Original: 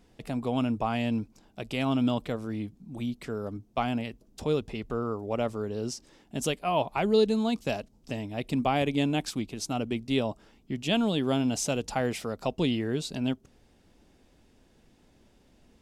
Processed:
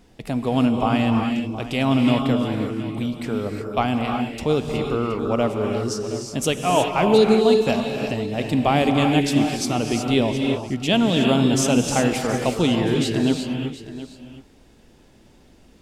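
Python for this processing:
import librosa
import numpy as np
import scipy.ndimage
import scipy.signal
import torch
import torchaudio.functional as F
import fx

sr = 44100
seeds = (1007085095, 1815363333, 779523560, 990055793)

y = x + 10.0 ** (-15.0 / 20.0) * np.pad(x, (int(720 * sr / 1000.0), 0))[:len(x)]
y = fx.rev_gated(y, sr, seeds[0], gate_ms=390, shape='rising', drr_db=2.5)
y = y * librosa.db_to_amplitude(7.0)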